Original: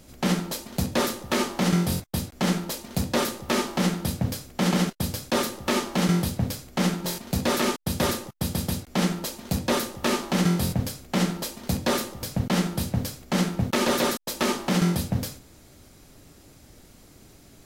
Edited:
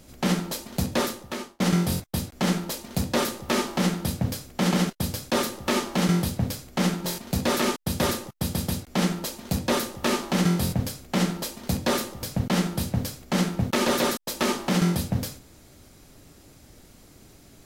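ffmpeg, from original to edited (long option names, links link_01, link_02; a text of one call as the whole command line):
ffmpeg -i in.wav -filter_complex "[0:a]asplit=2[link_01][link_02];[link_01]atrim=end=1.6,asetpts=PTS-STARTPTS,afade=type=out:start_time=0.94:duration=0.66[link_03];[link_02]atrim=start=1.6,asetpts=PTS-STARTPTS,afade=type=in:duration=0.004:curve=hsin[link_04];[link_03][link_04]concat=n=2:v=0:a=1" out.wav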